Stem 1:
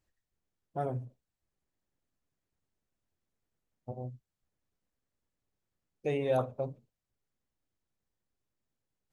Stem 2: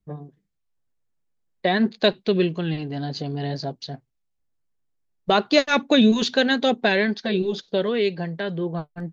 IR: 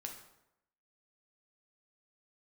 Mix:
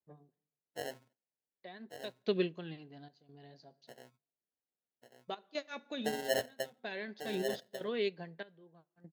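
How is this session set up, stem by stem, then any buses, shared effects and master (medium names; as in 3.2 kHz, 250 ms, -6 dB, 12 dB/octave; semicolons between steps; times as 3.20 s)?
-1.5 dB, 0.00 s, no send, echo send -5.5 dB, high-pass 230 Hz 12 dB/octave; sample-and-hold 37×
-9.5 dB, 0.00 s, send -15.5 dB, no echo send, trance gate "xxxx.xxx..." 73 bpm -12 dB; auto duck -12 dB, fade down 1.40 s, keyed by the first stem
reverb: on, RT60 0.85 s, pre-delay 3 ms
echo: delay 1144 ms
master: high-pass 220 Hz 6 dB/octave; upward expansion 1.5:1, over -47 dBFS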